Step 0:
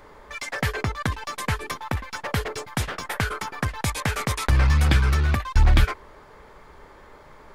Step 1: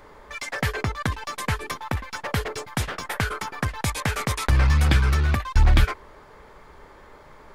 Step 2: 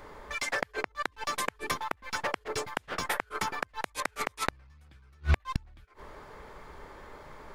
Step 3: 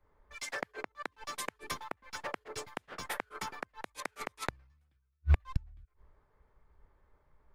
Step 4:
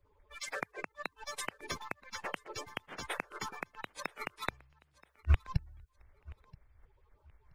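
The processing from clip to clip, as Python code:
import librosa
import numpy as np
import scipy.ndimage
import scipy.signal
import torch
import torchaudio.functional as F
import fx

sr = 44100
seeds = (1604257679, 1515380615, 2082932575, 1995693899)

y1 = x
y2 = fx.gate_flip(y1, sr, shuts_db=-13.0, range_db=-38)
y3 = fx.band_widen(y2, sr, depth_pct=100)
y3 = y3 * 10.0 ** (-8.0 / 20.0)
y4 = fx.spec_quant(y3, sr, step_db=30)
y4 = fx.echo_feedback(y4, sr, ms=978, feedback_pct=24, wet_db=-23)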